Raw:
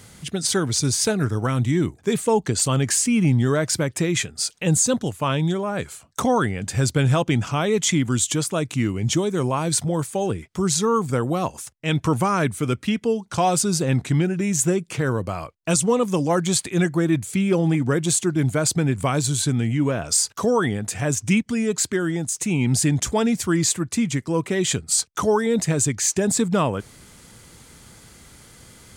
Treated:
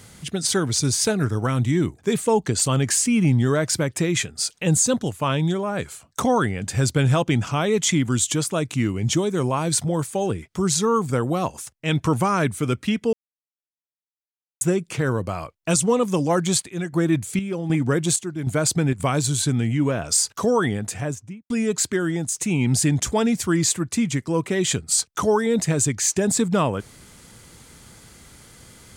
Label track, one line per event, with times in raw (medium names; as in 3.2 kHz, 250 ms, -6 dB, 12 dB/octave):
13.130000	14.610000	mute
16.160000	19.000000	square tremolo 1.3 Hz, depth 60%, duty 60%
20.790000	21.500000	studio fade out